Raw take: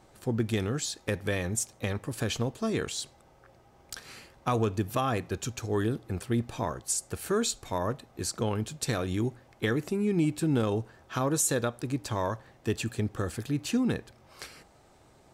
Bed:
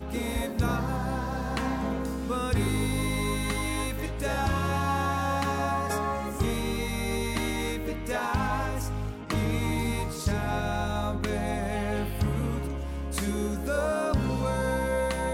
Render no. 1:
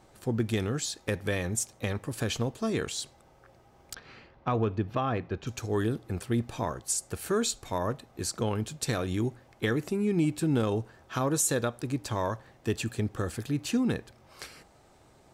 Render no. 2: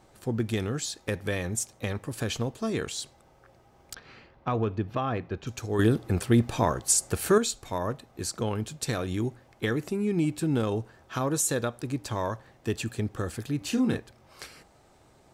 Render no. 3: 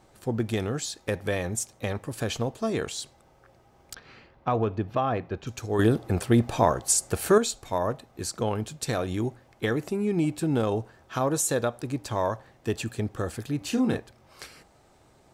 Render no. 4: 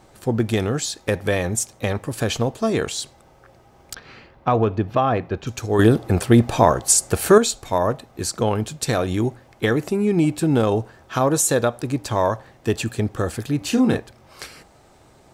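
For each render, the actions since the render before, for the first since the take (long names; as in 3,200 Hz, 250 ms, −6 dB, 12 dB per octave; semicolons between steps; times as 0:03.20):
0:03.94–0:05.47: high-frequency loss of the air 250 metres
0:05.79–0:07.38: clip gain +7 dB; 0:13.58–0:13.99: double-tracking delay 31 ms −5.5 dB
dynamic equaliser 690 Hz, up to +6 dB, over −42 dBFS, Q 1.3
level +7 dB; brickwall limiter −1 dBFS, peak gain reduction 1 dB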